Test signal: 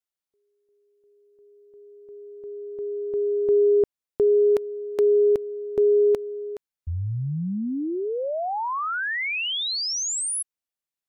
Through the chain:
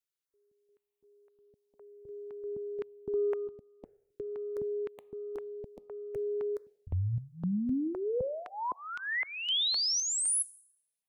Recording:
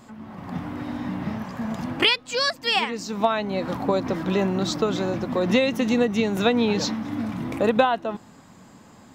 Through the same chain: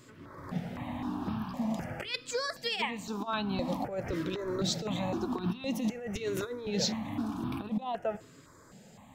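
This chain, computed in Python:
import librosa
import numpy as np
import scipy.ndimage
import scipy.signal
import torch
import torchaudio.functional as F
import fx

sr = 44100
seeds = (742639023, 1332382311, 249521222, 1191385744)

y = fx.over_compress(x, sr, threshold_db=-24.0, ratio=-0.5)
y = fx.rev_plate(y, sr, seeds[0], rt60_s=0.73, hf_ratio=1.0, predelay_ms=0, drr_db=17.0)
y = fx.phaser_held(y, sr, hz=3.9, low_hz=210.0, high_hz=2000.0)
y = F.gain(torch.from_numpy(y), -4.5).numpy()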